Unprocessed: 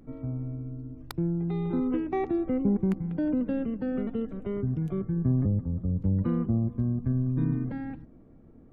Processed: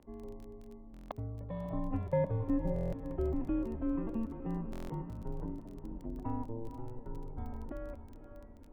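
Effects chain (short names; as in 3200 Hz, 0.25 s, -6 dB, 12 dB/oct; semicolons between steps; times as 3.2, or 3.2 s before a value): band shelf 760 Hz +11.5 dB; diffused feedback echo 0.519 s, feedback 50%, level -10 dB; mistuned SSB -230 Hz 230–3400 Hz; crackle 21/s -37 dBFS; stuck buffer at 0.92/2.74/4.71, samples 1024, times 7; gain -8 dB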